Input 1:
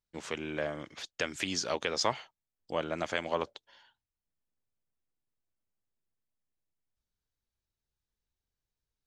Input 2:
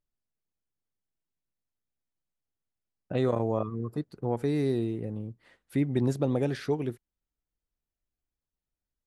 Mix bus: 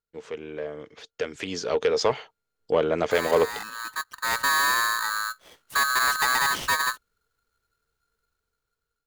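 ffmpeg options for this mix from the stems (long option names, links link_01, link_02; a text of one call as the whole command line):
ffmpeg -i stem1.wav -i stem2.wav -filter_complex "[0:a]lowpass=frequency=3700:poles=1,equalizer=frequency=450:width=5.8:gain=15,asoftclip=type=tanh:threshold=-17.5dB,volume=-3.5dB[link_01];[1:a]asoftclip=type=tanh:threshold=-27dB,aeval=exprs='val(0)*sgn(sin(2*PI*1400*n/s))':channel_layout=same,volume=-3.5dB,afade=type=in:start_time=3.74:duration=0.66:silence=0.298538[link_02];[link_01][link_02]amix=inputs=2:normalize=0,dynaudnorm=framelen=690:gausssize=5:maxgain=12dB" out.wav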